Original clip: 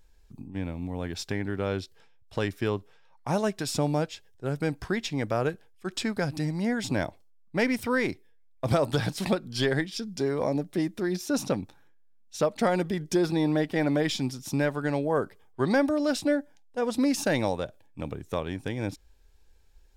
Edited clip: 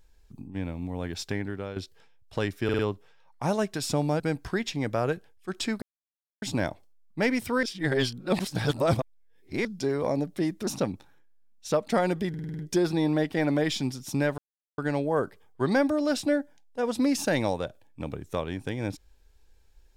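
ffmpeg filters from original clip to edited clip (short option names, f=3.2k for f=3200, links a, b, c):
-filter_complex "[0:a]asplit=18[a][b][c][d][e][f][g][h][i][j][k][l][m][n][o][p][q][r];[a]atrim=end=1.76,asetpts=PTS-STARTPTS,afade=t=out:st=1.36:d=0.4:silence=0.281838[s];[b]atrim=start=1.76:end=2.692,asetpts=PTS-STARTPTS,afade=t=in:d=0.004:c=hsin:silence=0.281838[t];[c]atrim=start=2.638:end=2.692[u];[d]atrim=start=2.638:end=2.692[v];[e]atrim=start=2.638:end=4.052[w];[f]atrim=start=4.568:end=6.19,asetpts=PTS-STARTPTS,afade=t=out:st=1.618:d=0.004:c=hsin[x];[g]atrim=start=6.19:end=6.79,asetpts=PTS-STARTPTS,volume=0[y];[h]atrim=start=6.79:end=8.002,asetpts=PTS-STARTPTS,afade=t=in:d=0.004:c=hsin[z];[i]atrim=start=7.998:end=10.022,asetpts=PTS-STARTPTS,areverse[aa];[j]atrim=start=10.018:end=11.042[ab];[k]atrim=start=11.358:end=13.032[ac];[l]atrim=start=12.978:end=13.032[ad];[m]atrim=start=12.978:end=13.032[ae];[n]atrim=start=12.978:end=13.032[af];[o]atrim=start=12.978:end=13.032[ag];[p]atrim=start=12.978:end=13.032[ah];[q]atrim=start=12.978:end=14.77,asetpts=PTS-STARTPTS,afade=t=out:st=1.788:d=0.004:c=hsin,apad=pad_dur=0.4[ai];[r]atrim=start=14.77,asetpts=PTS-STARTPTS,afade=t=in:d=0.004:c=hsin[aj];[s][t]concat=n=2:v=0:a=1[ak];[ak][u]acrossfade=d=0.004:c1=hsin:c2=hsin[al];[al][v]acrossfade=d=0.004:c1=hsin:c2=hsin[am];[am][w]acrossfade=d=0.004:c1=hsin:c2=hsin[an];[x][y][z]concat=n=3:v=0:a=1[ao];[an][ao]acrossfade=d=0.004:c1=hsin:c2=hsin[ap];[ap][aa]acrossfade=d=0.004:c1=hsin:c2=hsin[aq];[aq][ab]acrossfade=d=0.004:c1=hsin:c2=hsin[ar];[ar][ac]acrossfade=d=0.004:c1=hsin:c2=hsin[as];[as][ad]acrossfade=d=0.004:c1=hsin:c2=hsin[at];[at][ae]acrossfade=d=0.004:c1=hsin:c2=hsin[au];[au][af]acrossfade=d=0.004:c1=hsin:c2=hsin[av];[av][ag]acrossfade=d=0.004:c1=hsin:c2=hsin[aw];[aw][ah]acrossfade=d=0.004:c1=hsin:c2=hsin[ax];[ai][aj]concat=n=2:v=0:a=1[ay];[ax][ay]acrossfade=d=0.004:c1=hsin:c2=hsin"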